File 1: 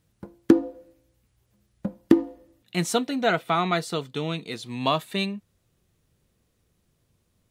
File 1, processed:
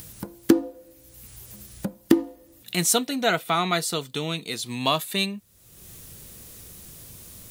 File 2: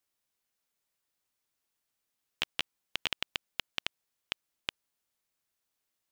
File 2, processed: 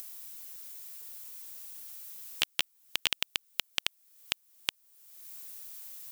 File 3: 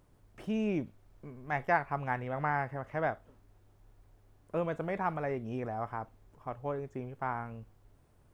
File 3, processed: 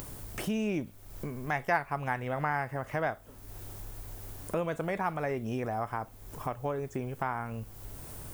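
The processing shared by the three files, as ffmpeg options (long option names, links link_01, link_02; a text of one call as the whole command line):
ffmpeg -i in.wav -af "aemphasis=mode=production:type=75kf,acompressor=mode=upward:threshold=-25dB:ratio=2.5,volume=-1dB" out.wav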